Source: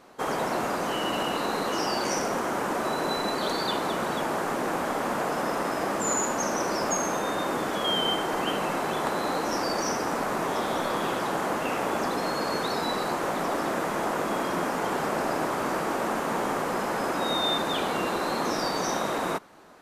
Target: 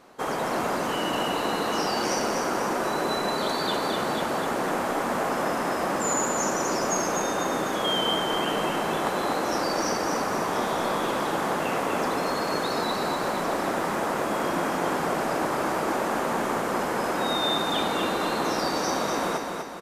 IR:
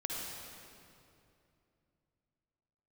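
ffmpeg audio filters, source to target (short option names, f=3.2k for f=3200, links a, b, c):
-filter_complex "[0:a]asettb=1/sr,asplit=3[a][b][c];[a]atrim=end=12.144[d];[b]atrim=start=12.14:end=14.41,asetpts=PTS-STARTPTS,afade=t=in:d=0.004:c=qsin,afade=t=out:st=2.266:d=0.004:c=qsin,aeval=exprs='sgn(val(0))*max(abs(val(0))-0.00168,0)':c=same[e];[c]atrim=start=14.406[f];[d][e]acrossfade=d=0.004:c1=hsin:c2=qsin[g];[g][f]acrossfade=d=0.004:c1=qsin:c2=hsin,aecho=1:1:248|496|744|992|1240|1488:0.562|0.281|0.141|0.0703|0.0351|0.0176"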